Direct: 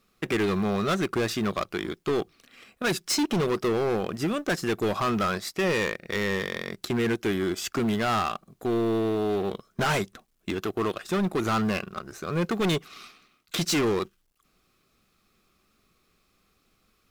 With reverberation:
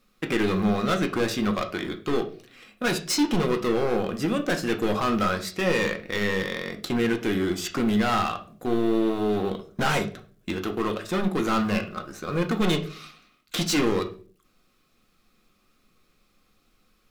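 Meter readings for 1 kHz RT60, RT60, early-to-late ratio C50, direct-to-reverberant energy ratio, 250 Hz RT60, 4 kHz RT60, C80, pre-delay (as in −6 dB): 0.35 s, 0.45 s, 13.0 dB, 4.0 dB, 0.60 s, 0.35 s, 18.0 dB, 4 ms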